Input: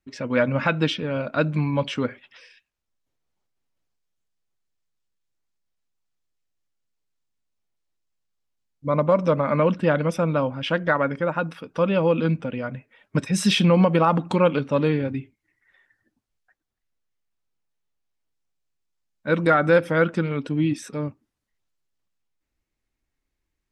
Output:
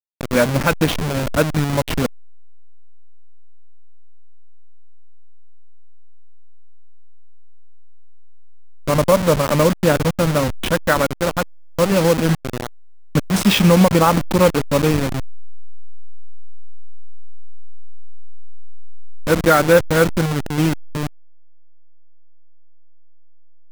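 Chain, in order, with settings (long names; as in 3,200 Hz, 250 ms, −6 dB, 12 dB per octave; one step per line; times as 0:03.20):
hold until the input has moved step −20.5 dBFS
level +5.5 dB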